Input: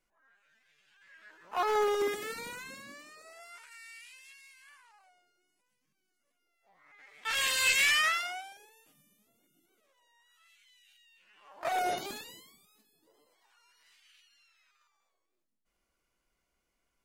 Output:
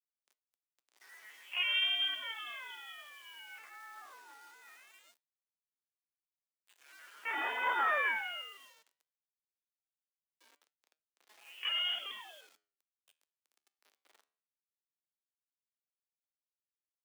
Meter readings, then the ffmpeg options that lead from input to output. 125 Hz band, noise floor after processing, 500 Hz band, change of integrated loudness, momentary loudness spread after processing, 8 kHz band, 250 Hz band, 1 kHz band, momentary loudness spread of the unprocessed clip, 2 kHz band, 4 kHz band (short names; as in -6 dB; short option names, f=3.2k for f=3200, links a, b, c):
n/a, under -85 dBFS, -13.5 dB, -3.5 dB, 21 LU, -22.5 dB, -11.5 dB, -4.0 dB, 25 LU, -4.0 dB, +1.0 dB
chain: -filter_complex "[0:a]lowpass=f=3k:t=q:w=0.5098,lowpass=f=3k:t=q:w=0.6013,lowpass=f=3k:t=q:w=0.9,lowpass=f=3k:t=q:w=2.563,afreqshift=-3500,asplit=2[a][b];[b]acompressor=threshold=-44dB:ratio=6,volume=-2dB[c];[a][c]amix=inputs=2:normalize=0,acrusher=bits=8:mix=0:aa=0.000001,flanger=delay=6.4:depth=7.5:regen=-85:speed=0.18:shape=sinusoidal,highpass=230,afreqshift=91"